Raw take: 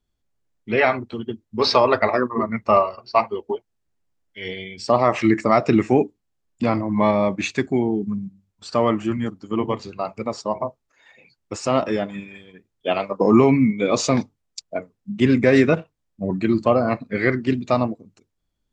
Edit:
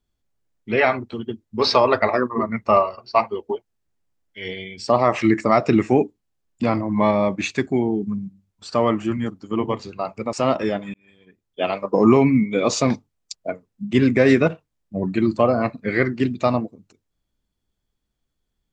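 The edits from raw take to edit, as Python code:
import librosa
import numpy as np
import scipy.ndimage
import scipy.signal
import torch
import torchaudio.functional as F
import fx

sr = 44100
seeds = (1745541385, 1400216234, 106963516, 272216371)

y = fx.edit(x, sr, fx.cut(start_s=10.33, length_s=1.27),
    fx.fade_in_span(start_s=12.21, length_s=1.02, curve='qsin'), tone=tone)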